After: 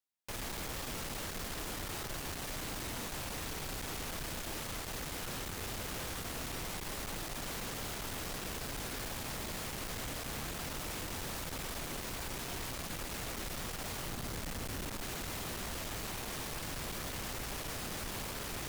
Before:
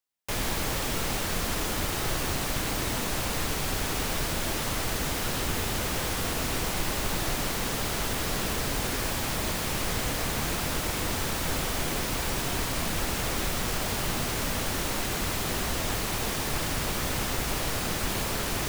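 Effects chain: 14.11–15.03 s: bass shelf 320 Hz +6 dB; valve stage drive 34 dB, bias 0.55; trim -3.5 dB

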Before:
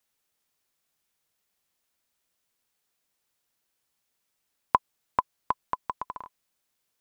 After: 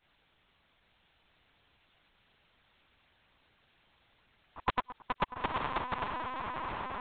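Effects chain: short-time spectra conjugated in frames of 217 ms; echo that smears into a reverb 917 ms, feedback 54%, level -5.5 dB; LPC vocoder at 8 kHz pitch kept; spectrum-flattening compressor 2:1

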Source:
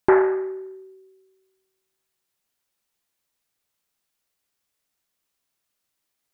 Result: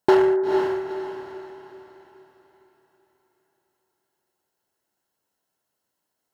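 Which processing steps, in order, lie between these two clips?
resonant high shelf 1.6 kHz -6.5 dB, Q 1.5; in parallel at -4 dB: wavefolder -20.5 dBFS; on the sum: comb of notches 1.2 kHz; echo that smears into a reverb 473 ms, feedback 41%, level -5 dB

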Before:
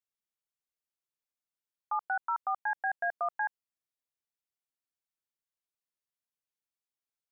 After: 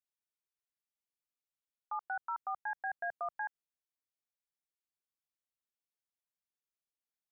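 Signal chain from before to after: 2.03–3.42 s: bass shelf 220 Hz +7.5 dB; trim -6.5 dB

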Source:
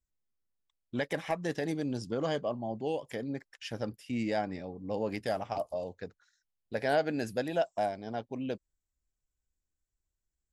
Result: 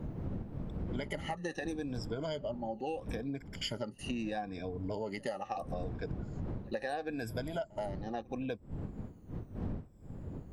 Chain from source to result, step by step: drifting ripple filter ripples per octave 1.7, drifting -0.76 Hz, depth 19 dB; wind noise 190 Hz -40 dBFS; compression 10:1, threshold -42 dBFS, peak gain reduction 23 dB; pre-echo 75 ms -24 dB; trim +7.5 dB

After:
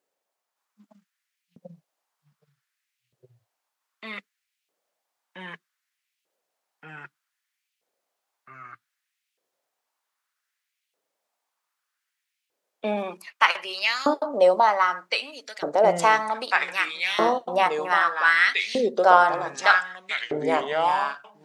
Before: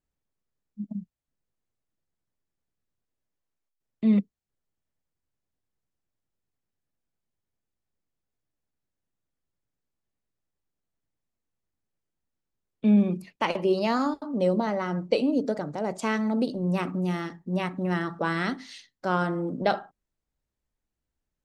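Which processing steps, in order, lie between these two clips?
ever faster or slower copies 567 ms, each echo -3 st, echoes 3; LFO high-pass saw up 0.64 Hz 460–2700 Hz; trim +7.5 dB

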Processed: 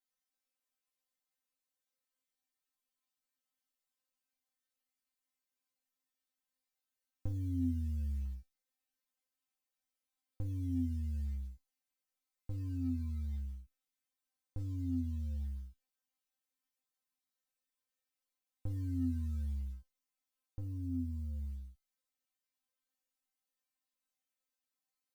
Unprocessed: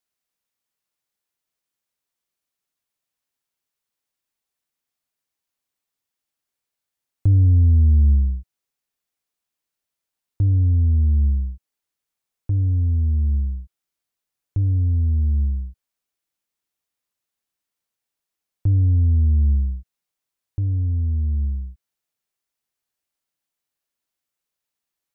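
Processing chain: compression 4:1, threshold -17 dBFS, peak gain reduction 4 dB; short-mantissa float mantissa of 6-bit; feedback comb 260 Hz, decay 0.25 s, harmonics all, mix 100%; trim +5 dB

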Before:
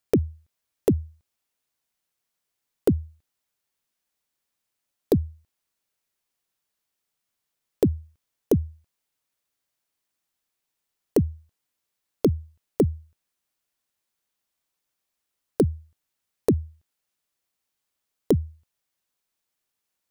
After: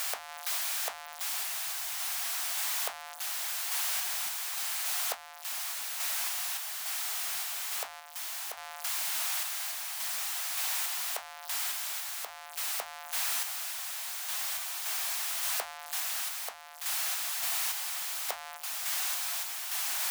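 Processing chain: jump at every zero crossing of -23.5 dBFS; elliptic high-pass 690 Hz, stop band 50 dB; random-step tremolo

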